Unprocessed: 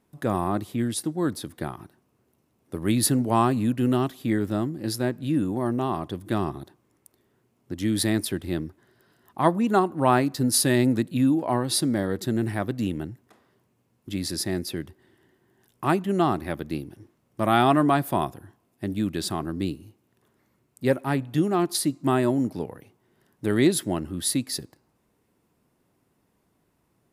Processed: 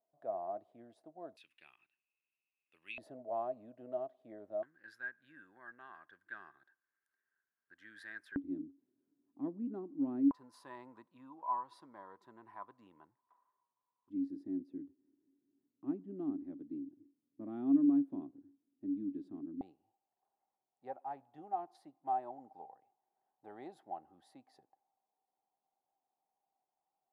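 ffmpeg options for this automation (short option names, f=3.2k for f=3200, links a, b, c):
-af "asetnsamples=n=441:p=0,asendcmd='1.37 bandpass f 2600;2.98 bandpass f 640;4.63 bandpass f 1600;8.36 bandpass f 280;10.31 bandpass f 1000;14.1 bandpass f 280;19.61 bandpass f 780',bandpass=f=660:t=q:w=18:csg=0"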